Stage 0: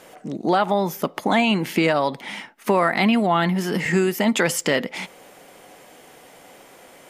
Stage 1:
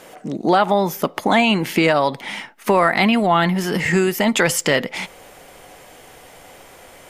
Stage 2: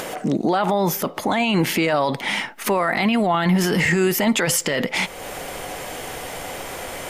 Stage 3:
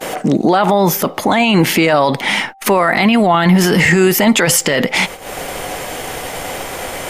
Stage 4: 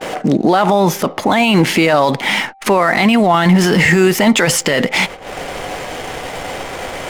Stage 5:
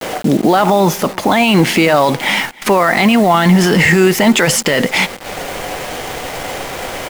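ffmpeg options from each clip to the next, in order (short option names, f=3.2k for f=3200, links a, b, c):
-af "asubboost=boost=5.5:cutoff=89,volume=4dB"
-filter_complex "[0:a]asplit=2[a][b];[b]acompressor=mode=upward:threshold=-22dB:ratio=2.5,volume=1dB[c];[a][c]amix=inputs=2:normalize=0,alimiter=limit=-9dB:level=0:latency=1:release=19,volume=-1.5dB"
-af "agate=range=-36dB:threshold=-32dB:ratio=16:detection=peak,aeval=exprs='val(0)+0.00355*sin(2*PI*780*n/s)':c=same,volume=7.5dB"
-af "adynamicsmooth=sensitivity=7.5:basefreq=1.9k"
-af "acrusher=bits=4:mix=0:aa=0.000001,aecho=1:1:305:0.0708,volume=1dB"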